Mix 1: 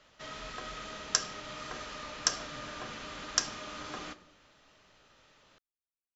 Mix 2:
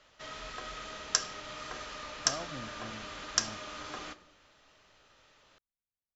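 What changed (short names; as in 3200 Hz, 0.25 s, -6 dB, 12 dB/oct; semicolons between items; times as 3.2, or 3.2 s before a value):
speech +10.0 dB; background: add bell 190 Hz -4.5 dB 1.4 oct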